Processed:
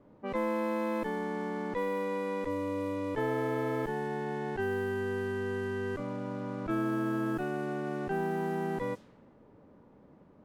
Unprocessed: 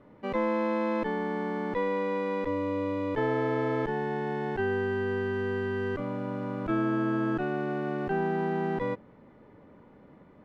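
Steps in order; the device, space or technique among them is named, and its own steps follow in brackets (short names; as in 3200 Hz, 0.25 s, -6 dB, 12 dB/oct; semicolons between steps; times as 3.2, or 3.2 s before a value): cassette deck with a dynamic noise filter (white noise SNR 27 dB; low-pass opened by the level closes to 900 Hz, open at -25 dBFS); gain -3.5 dB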